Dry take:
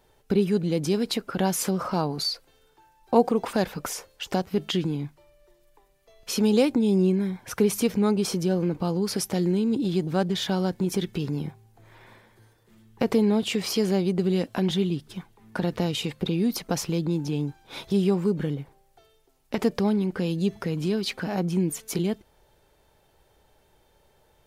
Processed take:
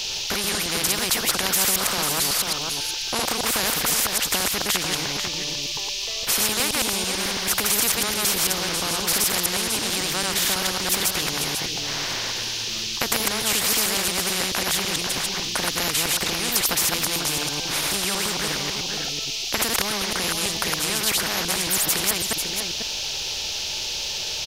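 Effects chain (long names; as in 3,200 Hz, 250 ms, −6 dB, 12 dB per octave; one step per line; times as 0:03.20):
delay that plays each chunk backwards 110 ms, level −1 dB
noise in a band 2,800–5,600 Hz −46 dBFS
tilt shelving filter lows −4 dB, about 1,100 Hz
on a send: single-tap delay 494 ms −17.5 dB
on the sum: every bin compressed towards the loudest bin 4 to 1
level +3 dB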